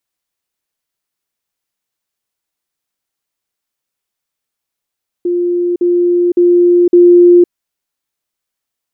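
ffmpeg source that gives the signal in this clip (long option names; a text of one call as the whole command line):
ffmpeg -f lavfi -i "aevalsrc='pow(10,(-11+3*floor(t/0.56))/20)*sin(2*PI*351*t)*clip(min(mod(t,0.56),0.51-mod(t,0.56))/0.005,0,1)':duration=2.24:sample_rate=44100" out.wav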